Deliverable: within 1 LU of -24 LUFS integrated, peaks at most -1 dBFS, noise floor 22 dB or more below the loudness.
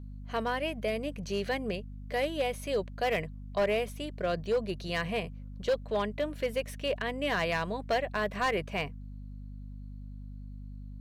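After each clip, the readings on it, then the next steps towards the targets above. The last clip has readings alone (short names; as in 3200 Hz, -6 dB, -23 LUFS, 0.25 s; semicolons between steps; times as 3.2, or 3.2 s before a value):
clipped 0.9%; flat tops at -22.5 dBFS; hum 50 Hz; harmonics up to 250 Hz; hum level -41 dBFS; loudness -32.5 LUFS; peak -22.5 dBFS; loudness target -24.0 LUFS
-> clip repair -22.5 dBFS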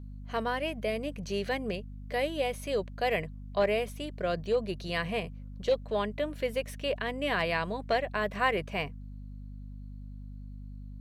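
clipped 0.0%; hum 50 Hz; harmonics up to 250 Hz; hum level -40 dBFS
-> de-hum 50 Hz, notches 5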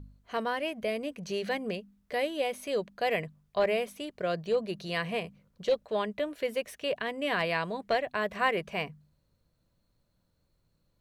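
hum none; loudness -32.0 LUFS; peak -13.0 dBFS; loudness target -24.0 LUFS
-> gain +8 dB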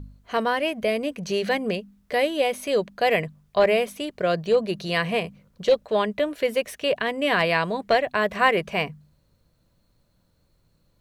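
loudness -24.0 LUFS; peak -5.0 dBFS; noise floor -66 dBFS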